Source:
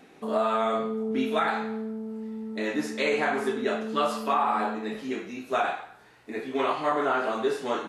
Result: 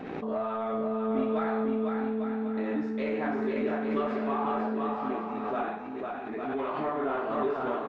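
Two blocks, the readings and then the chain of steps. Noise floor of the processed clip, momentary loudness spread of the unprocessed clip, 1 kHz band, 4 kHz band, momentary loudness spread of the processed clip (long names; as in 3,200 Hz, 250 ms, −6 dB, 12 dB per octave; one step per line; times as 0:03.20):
−38 dBFS, 10 LU, −5.0 dB, −13.5 dB, 5 LU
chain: leveller curve on the samples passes 1
head-to-tape spacing loss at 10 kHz 39 dB
on a send: bouncing-ball delay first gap 500 ms, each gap 0.7×, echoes 5
on the sum: background raised ahead of every attack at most 32 dB per second
level −6.5 dB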